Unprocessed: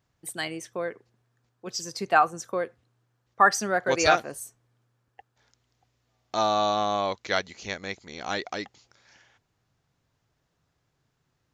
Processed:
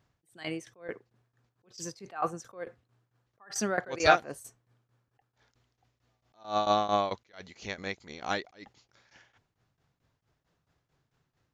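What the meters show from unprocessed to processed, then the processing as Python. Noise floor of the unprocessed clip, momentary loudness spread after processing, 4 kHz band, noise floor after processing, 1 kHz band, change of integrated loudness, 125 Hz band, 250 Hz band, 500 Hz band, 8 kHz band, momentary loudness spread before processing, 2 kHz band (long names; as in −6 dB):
−76 dBFS, 19 LU, −6.0 dB, −81 dBFS, −6.0 dB, −4.5 dB, −3.0 dB, −3.5 dB, −4.5 dB, −6.5 dB, 15 LU, −6.5 dB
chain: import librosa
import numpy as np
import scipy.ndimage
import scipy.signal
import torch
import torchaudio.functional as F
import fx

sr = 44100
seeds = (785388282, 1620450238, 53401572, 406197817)

y = fx.tremolo_shape(x, sr, shape='saw_down', hz=4.5, depth_pct=85)
y = fx.high_shelf(y, sr, hz=6500.0, db=-8.0)
y = fx.attack_slew(y, sr, db_per_s=190.0)
y = F.gain(torch.from_numpy(y), 4.5).numpy()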